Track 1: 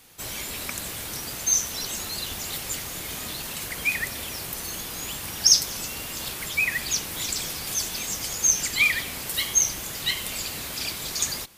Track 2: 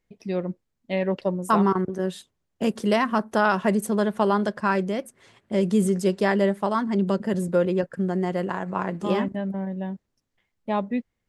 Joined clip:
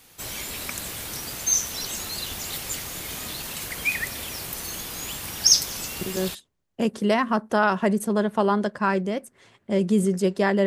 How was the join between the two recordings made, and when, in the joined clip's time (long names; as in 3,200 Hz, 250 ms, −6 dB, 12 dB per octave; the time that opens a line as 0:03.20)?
track 1
0:06.18: continue with track 2 from 0:02.00, crossfade 0.34 s logarithmic